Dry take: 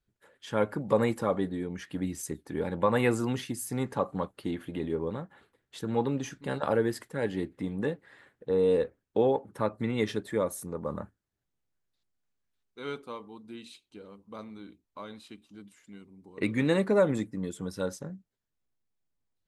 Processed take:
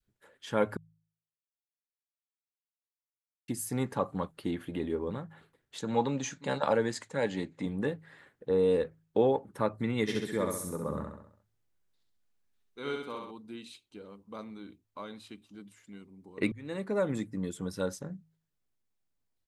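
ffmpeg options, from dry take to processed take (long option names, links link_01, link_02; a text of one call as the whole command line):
ffmpeg -i in.wav -filter_complex "[0:a]asettb=1/sr,asplit=3[link_01][link_02][link_03];[link_01]atrim=end=5.784[link_04];[link_02]atrim=start=5.78:end=7.66,asetpts=PTS-STARTPTS,afade=type=in:duration=0.004:curve=qsin,afade=type=out:start_time=1.876:duration=0.004:curve=qsin,highpass=120,equalizer=frequency=360:width_type=q:width=4:gain=-5,equalizer=frequency=560:width_type=q:width=4:gain=4,equalizer=frequency=900:width_type=q:width=4:gain=5,equalizer=frequency=2300:width_type=q:width=4:gain=4,equalizer=frequency=4000:width_type=q:width=4:gain=6,equalizer=frequency=6800:width_type=q:width=4:gain=10,lowpass=frequency=9000:width=0.5412,lowpass=frequency=9000:width=1.3066[link_05];[link_03]atrim=start=7.656[link_06];[link_04][link_05]acrossfade=duration=0.004:curve1=hsin:curve2=qsin[link_07];[link_07][link_06]acrossfade=duration=0.004:curve1=qsin:curve2=hsin,asplit=3[link_08][link_09][link_10];[link_08]afade=type=out:start_time=10.07:duration=0.02[link_11];[link_09]aecho=1:1:66|132|198|264|330|396:0.668|0.321|0.154|0.0739|0.0355|0.017,afade=type=in:start_time=10.07:duration=0.02,afade=type=out:start_time=13.3:duration=0.02[link_12];[link_10]afade=type=in:start_time=13.3:duration=0.02[link_13];[link_11][link_12][link_13]amix=inputs=3:normalize=0,asplit=4[link_14][link_15][link_16][link_17];[link_14]atrim=end=0.77,asetpts=PTS-STARTPTS,afade=type=out:start_time=0.766:duration=0.004:curve=hsin[link_18];[link_15]atrim=start=0.77:end=3.48,asetpts=PTS-STARTPTS,volume=0[link_19];[link_16]atrim=start=3.48:end=16.52,asetpts=PTS-STARTPTS,afade=type=in:duration=0.004:curve=hsin,afade=type=out:start_time=13.036:duration=0.004:curve=hsin[link_20];[link_17]atrim=start=16.52,asetpts=PTS-STARTPTS,afade=type=in:duration=0.83[link_21];[link_18][link_19][link_20][link_21]concat=n=4:v=0:a=1,bandreject=frequency=53.52:width_type=h:width=4,bandreject=frequency=107.04:width_type=h:width=4,bandreject=frequency=160.56:width_type=h:width=4,adynamicequalizer=threshold=0.0112:dfrequency=550:dqfactor=0.73:tfrequency=550:tqfactor=0.73:attack=5:release=100:ratio=0.375:range=2.5:mode=cutabove:tftype=bell" out.wav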